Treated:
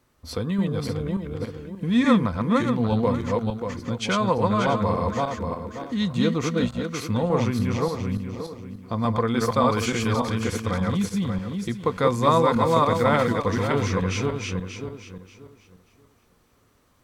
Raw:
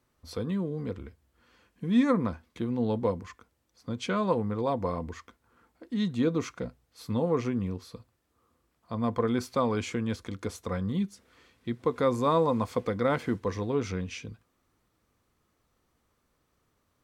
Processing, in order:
feedback delay that plays each chunk backwards 292 ms, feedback 47%, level −1 dB
dynamic equaliser 340 Hz, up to −7 dB, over −38 dBFS, Q 0.91
level +7.5 dB

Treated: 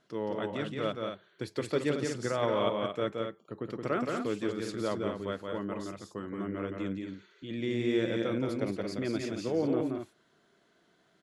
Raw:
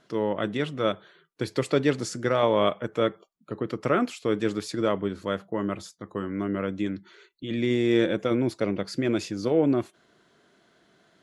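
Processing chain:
loudspeakers that aren't time-aligned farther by 59 metres −4 dB, 77 metres −7 dB
level −8 dB

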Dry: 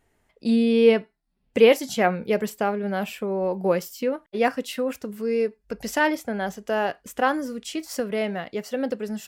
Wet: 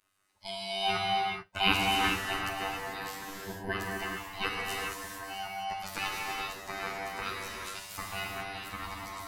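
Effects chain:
neighbouring bands swapped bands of 500 Hz
phases set to zero 97.3 Hz
gate on every frequency bin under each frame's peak −15 dB weak
reverb whose tail is shaped and stops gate 470 ms flat, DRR −3 dB

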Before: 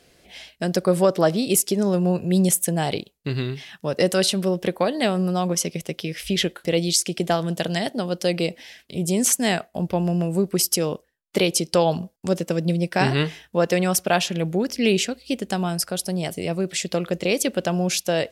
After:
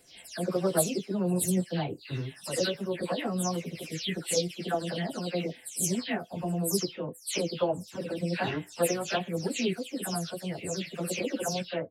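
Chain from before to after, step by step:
every frequency bin delayed by itself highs early, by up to 347 ms
tuned comb filter 100 Hz, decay 0.17 s, harmonics odd, mix 50%
time stretch by phase vocoder 0.65×

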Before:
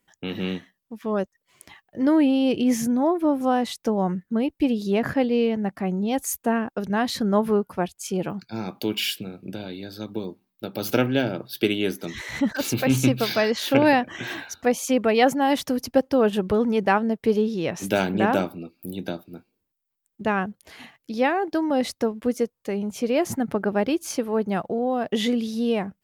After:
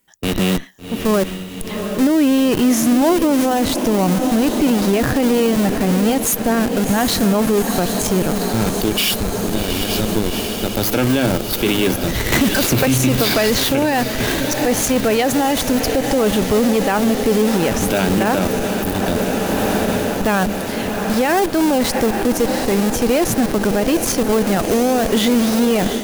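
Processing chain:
in parallel at −4 dB: comparator with hysteresis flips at −28.5 dBFS
on the sum: high-shelf EQ 6,000 Hz +9.5 dB
on a send: feedback delay with all-pass diffusion 754 ms, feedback 74%, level −12 dB
on the sum: automatic gain control gain up to 11.5 dB
boost into a limiter +10.5 dB
0:12.32–0:13.64: multiband upward and downward compressor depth 100%
level −7 dB

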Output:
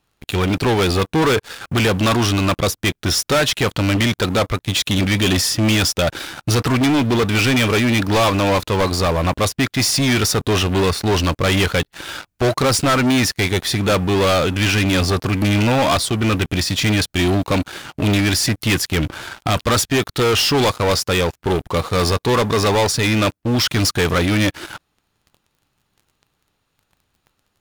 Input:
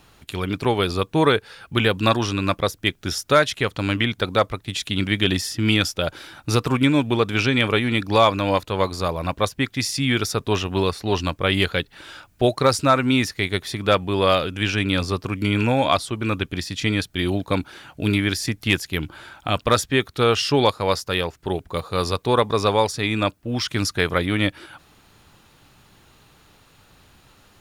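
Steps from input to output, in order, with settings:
leveller curve on the samples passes 5
level −6.5 dB

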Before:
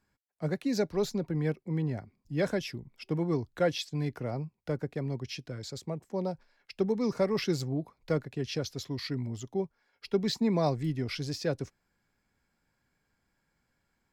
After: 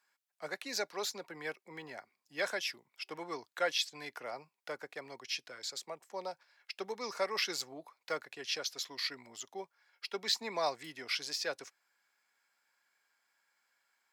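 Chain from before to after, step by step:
high-pass filter 970 Hz 12 dB per octave
level +3.5 dB

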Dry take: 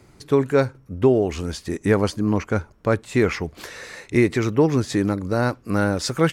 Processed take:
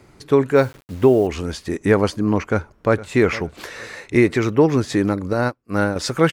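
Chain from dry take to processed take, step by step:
bass and treble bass −3 dB, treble −4 dB
0:00.56–0:01.27: bit-depth reduction 8 bits, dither none
0:02.47–0:03.10: delay throw 460 ms, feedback 30%, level −16.5 dB
0:05.33–0:05.96: expander for the loud parts 2.5 to 1, over −36 dBFS
level +3.5 dB

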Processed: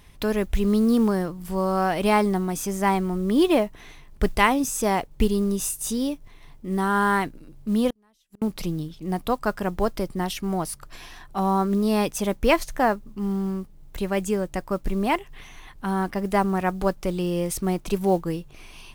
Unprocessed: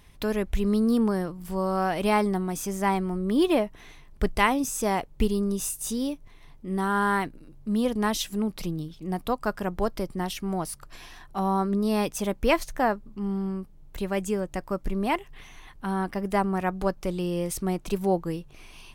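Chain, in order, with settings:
noise that follows the level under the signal 31 dB
0:07.90–0:08.42: gate with flip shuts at −23 dBFS, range −40 dB
level +3 dB

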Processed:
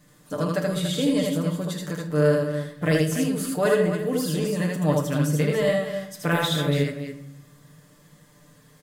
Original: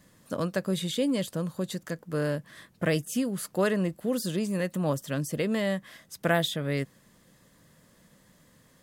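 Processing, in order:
comb filter 6.7 ms
loudspeakers that aren't time-aligned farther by 27 metres −2 dB, 98 metres −9 dB
on a send at −7 dB: convolution reverb RT60 0.80 s, pre-delay 7 ms

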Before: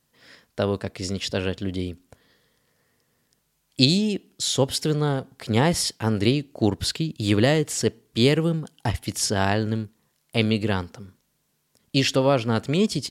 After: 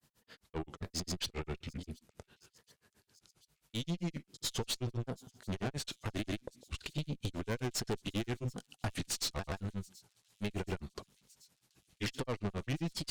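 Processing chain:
pitch shifter swept by a sawtooth −5 semitones, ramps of 859 ms
downward compressor 6 to 1, threshold −28 dBFS, peak gain reduction 15.5 dB
granular cloud 108 ms, grains 7.5 per second, pitch spread up and down by 0 semitones
tube saturation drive 36 dB, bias 0.6
delay with a high-pass on its return 730 ms, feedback 78%, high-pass 5,500 Hz, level −20 dB
level +5.5 dB

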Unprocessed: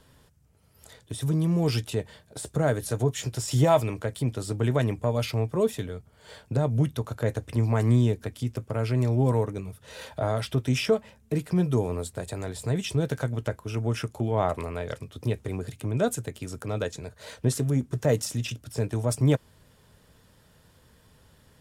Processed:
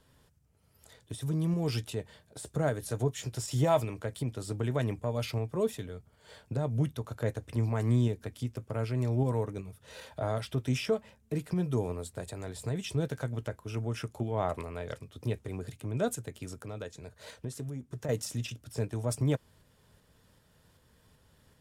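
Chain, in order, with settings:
0:16.49–0:18.09: downward compressor 2.5 to 1, threshold −33 dBFS, peak gain reduction 10 dB
shaped tremolo saw up 2.6 Hz, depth 30%
level −4.5 dB

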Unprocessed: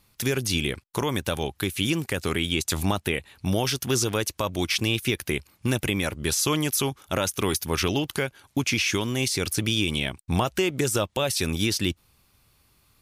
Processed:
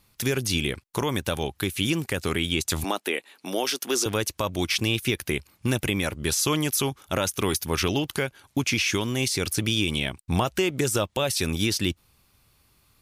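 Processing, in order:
0:02.84–0:04.06: high-pass filter 270 Hz 24 dB per octave

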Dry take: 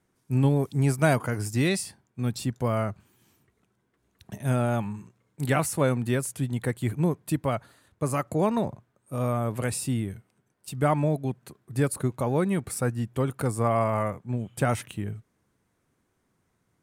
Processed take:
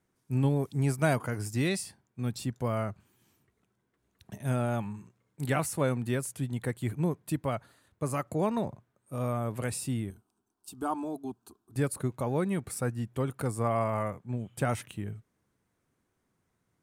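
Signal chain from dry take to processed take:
0:10.10–0:11.76: phaser with its sweep stopped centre 540 Hz, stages 6
level −4.5 dB

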